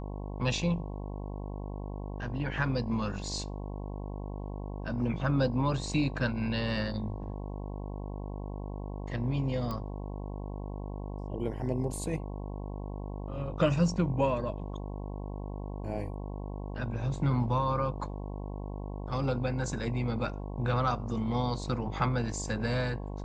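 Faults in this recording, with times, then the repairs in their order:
mains buzz 50 Hz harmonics 22 −38 dBFS
0:09.71: click −22 dBFS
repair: click removal
hum removal 50 Hz, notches 22

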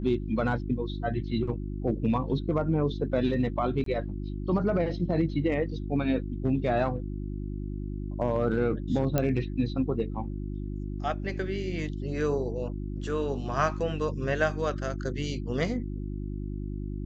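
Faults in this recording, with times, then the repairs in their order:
mains hum 50 Hz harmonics 7 −34 dBFS
0:03.84–0:03.86: drop-out 23 ms
0:09.18: click −11 dBFS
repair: click removal
hum removal 50 Hz, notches 7
repair the gap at 0:03.84, 23 ms

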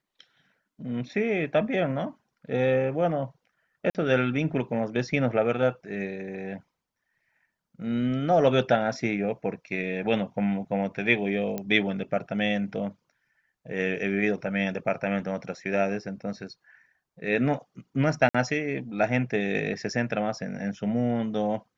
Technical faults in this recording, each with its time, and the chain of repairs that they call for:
0:03.90–0:03.95: drop-out 48 ms
0:11.58: click −17 dBFS
0:18.29–0:18.34: drop-out 55 ms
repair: click removal
repair the gap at 0:03.90, 48 ms
repair the gap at 0:18.29, 55 ms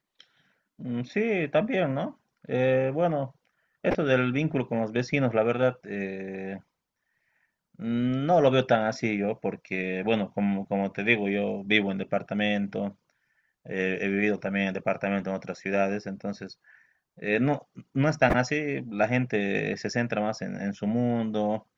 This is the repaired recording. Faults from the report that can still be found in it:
none of them is left

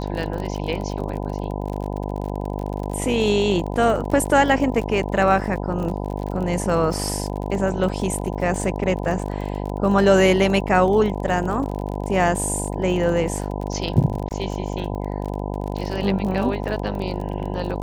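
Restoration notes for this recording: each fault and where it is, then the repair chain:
mains buzz 50 Hz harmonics 20 −27 dBFS
surface crackle 39 per second −28 dBFS
0:14.29–0:14.31: drop-out 18 ms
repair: click removal
hum removal 50 Hz, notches 20
repair the gap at 0:14.29, 18 ms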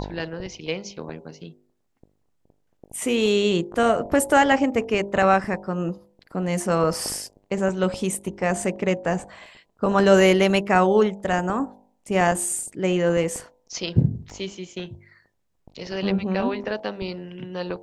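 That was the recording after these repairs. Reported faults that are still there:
none of them is left

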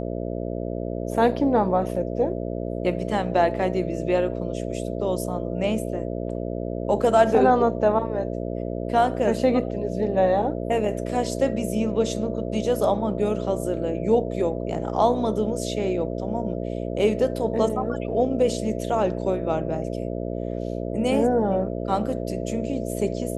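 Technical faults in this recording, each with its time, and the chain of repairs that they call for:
mains buzz 60 Hz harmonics 11 −29 dBFS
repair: hum removal 60 Hz, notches 11

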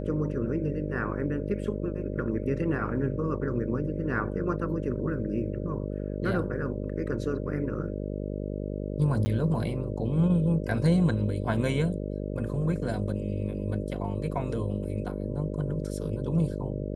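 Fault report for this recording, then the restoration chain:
mains buzz 50 Hz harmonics 12 −33 dBFS
0:09.25–0:09.26: drop-out 10 ms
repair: hum removal 50 Hz, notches 12
repair the gap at 0:09.25, 10 ms

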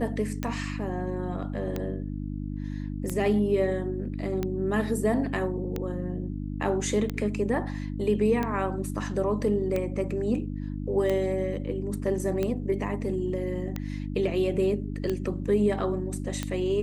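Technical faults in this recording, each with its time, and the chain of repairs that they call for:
mains hum 50 Hz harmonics 6 −33 dBFS
scratch tick 45 rpm −16 dBFS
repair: click removal
hum removal 50 Hz, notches 6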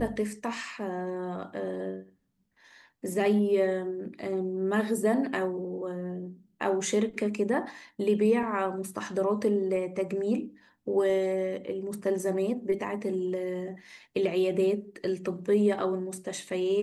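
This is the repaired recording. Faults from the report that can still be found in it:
none of them is left

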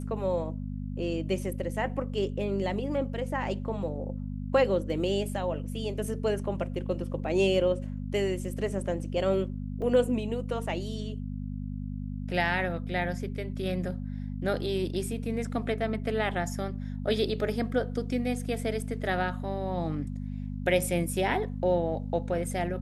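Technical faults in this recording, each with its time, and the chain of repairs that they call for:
mains hum 50 Hz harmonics 5 −35 dBFS
0:09.82: drop-out 3.7 ms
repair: hum removal 50 Hz, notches 5
repair the gap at 0:09.82, 3.7 ms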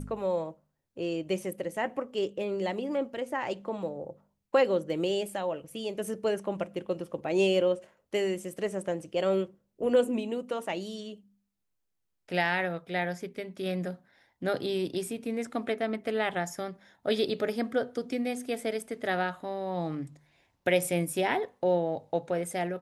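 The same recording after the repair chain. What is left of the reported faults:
none of them is left

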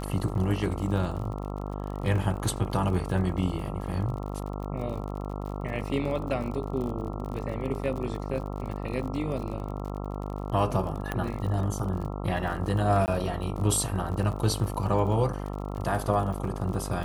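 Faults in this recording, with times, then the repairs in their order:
mains buzz 50 Hz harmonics 27 −34 dBFS
surface crackle 47 per second −35 dBFS
0:11.12: click −16 dBFS
0:13.06–0:13.08: drop-out 19 ms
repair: click removal
hum removal 50 Hz, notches 27
repair the gap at 0:13.06, 19 ms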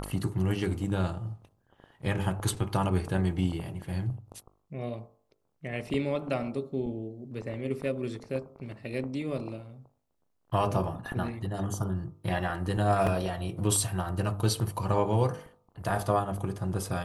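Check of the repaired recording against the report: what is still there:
none of them is left

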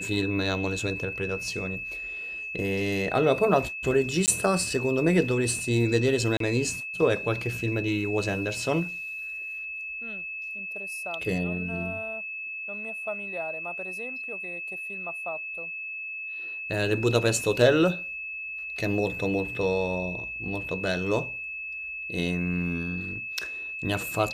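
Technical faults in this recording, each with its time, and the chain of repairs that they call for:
whistle 2,600 Hz −33 dBFS
0:04.26–0:04.28: drop-out 18 ms
0:06.37–0:06.40: drop-out 33 ms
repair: notch filter 2,600 Hz, Q 30
repair the gap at 0:04.26, 18 ms
repair the gap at 0:06.37, 33 ms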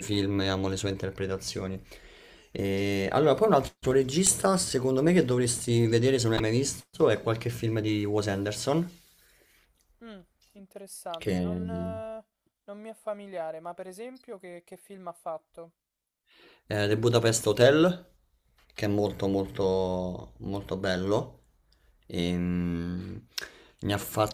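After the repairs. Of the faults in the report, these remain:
none of them is left

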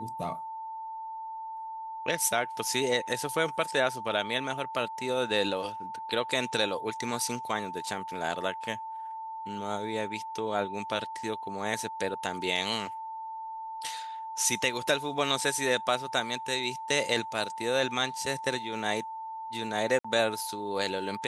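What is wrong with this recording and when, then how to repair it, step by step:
whistle 890 Hz −36 dBFS
0:19.99–0:20.05: drop-out 55 ms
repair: notch filter 890 Hz, Q 30
repair the gap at 0:19.99, 55 ms

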